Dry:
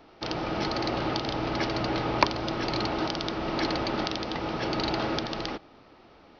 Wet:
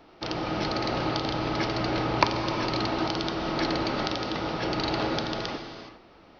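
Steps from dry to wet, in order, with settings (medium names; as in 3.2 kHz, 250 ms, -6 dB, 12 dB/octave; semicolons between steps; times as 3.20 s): gated-style reverb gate 440 ms flat, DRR 6 dB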